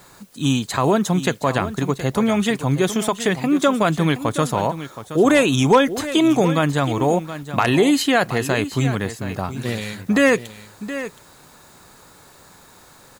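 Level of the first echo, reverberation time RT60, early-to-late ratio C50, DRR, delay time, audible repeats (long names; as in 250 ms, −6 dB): −12.5 dB, no reverb audible, no reverb audible, no reverb audible, 721 ms, 1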